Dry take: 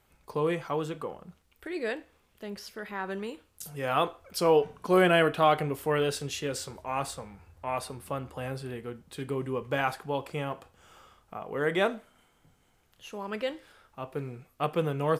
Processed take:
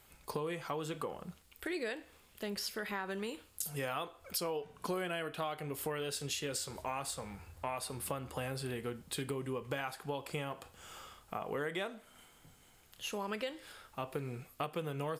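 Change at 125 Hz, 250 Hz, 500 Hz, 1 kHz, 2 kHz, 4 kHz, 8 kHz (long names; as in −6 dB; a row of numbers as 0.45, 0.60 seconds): −8.0, −9.0, −11.0, −10.5, −8.5, −4.5, +0.5 decibels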